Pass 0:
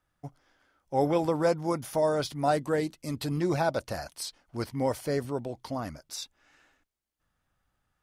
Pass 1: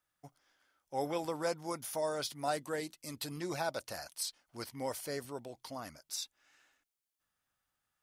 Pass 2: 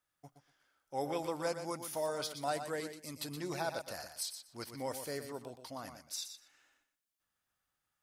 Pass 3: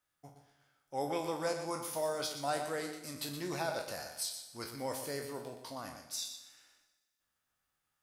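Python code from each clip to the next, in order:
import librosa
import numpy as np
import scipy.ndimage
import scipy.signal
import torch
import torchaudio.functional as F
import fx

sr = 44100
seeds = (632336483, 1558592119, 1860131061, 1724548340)

y1 = fx.tilt_eq(x, sr, slope=2.5)
y1 = y1 * librosa.db_to_amplitude(-7.5)
y2 = fx.echo_feedback(y1, sr, ms=121, feedback_pct=17, wet_db=-9.0)
y2 = y2 * librosa.db_to_amplitude(-1.5)
y3 = fx.spec_trails(y2, sr, decay_s=0.34)
y3 = fx.rev_schroeder(y3, sr, rt60_s=1.3, comb_ms=38, drr_db=11.0)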